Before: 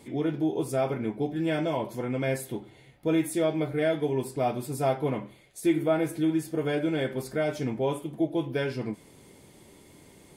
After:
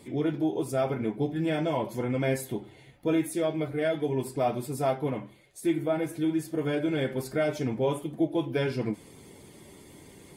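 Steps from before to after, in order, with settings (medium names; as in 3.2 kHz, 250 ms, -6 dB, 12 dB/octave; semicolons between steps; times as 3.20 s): coarse spectral quantiser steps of 15 dB; gain riding 0.5 s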